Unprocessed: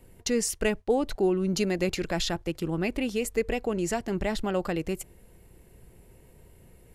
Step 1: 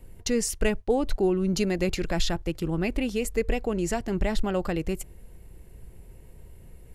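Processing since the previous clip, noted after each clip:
low-shelf EQ 85 Hz +11.5 dB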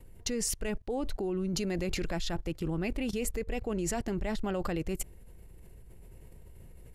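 output level in coarse steps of 18 dB
level +4.5 dB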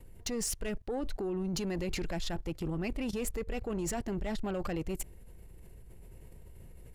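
soft clipping −27.5 dBFS, distortion −17 dB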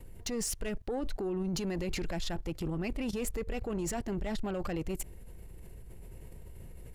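brickwall limiter −32 dBFS, peak gain reduction 4.5 dB
level +3.5 dB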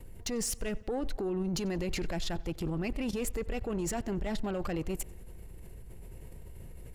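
tape delay 91 ms, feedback 70%, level −21 dB, low-pass 5,200 Hz
level +1 dB

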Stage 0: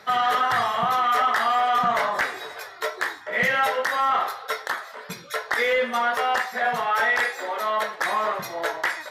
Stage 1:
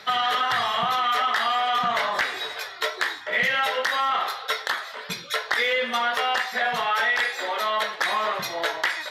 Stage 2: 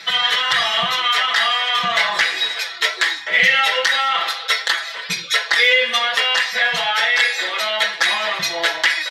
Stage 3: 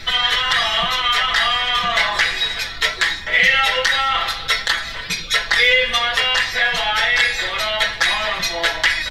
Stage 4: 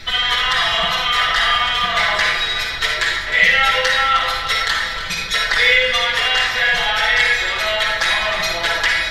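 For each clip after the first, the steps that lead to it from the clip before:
parametric band 3,400 Hz +10 dB 1.4 octaves; downward compressor 3 to 1, threshold −21 dBFS, peak gain reduction 6 dB
flat-topped bell 4,100 Hz +9 dB 2.7 octaves; comb filter 6 ms, depth 93%; level −1 dB
background noise brown −36 dBFS
delay that swaps between a low-pass and a high-pass 155 ms, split 1,600 Hz, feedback 76%, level −9.5 dB; convolution reverb RT60 0.60 s, pre-delay 47 ms, DRR 0.5 dB; level −2 dB

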